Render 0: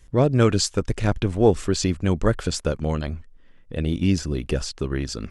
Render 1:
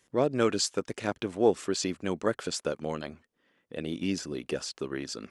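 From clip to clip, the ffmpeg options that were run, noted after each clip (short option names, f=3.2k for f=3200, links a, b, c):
-af "highpass=260,volume=-5dB"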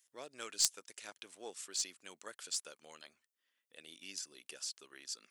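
-af "aderivative,aeval=exprs='0.224*(cos(1*acos(clip(val(0)/0.224,-1,1)))-cos(1*PI/2))+0.0501*(cos(3*acos(clip(val(0)/0.224,-1,1)))-cos(3*PI/2))+0.00126*(cos(6*acos(clip(val(0)/0.224,-1,1)))-cos(6*PI/2))':c=same,volume=8dB"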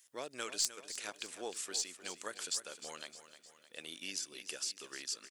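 -af "acompressor=threshold=-46dB:ratio=2,aecho=1:1:307|614|921|1228|1535:0.237|0.123|0.0641|0.0333|0.0173,volume=7.5dB"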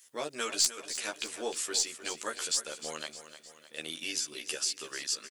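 -filter_complex "[0:a]asplit=2[a][b];[b]adelay=13,volume=-2dB[c];[a][c]amix=inputs=2:normalize=0,volume=5dB"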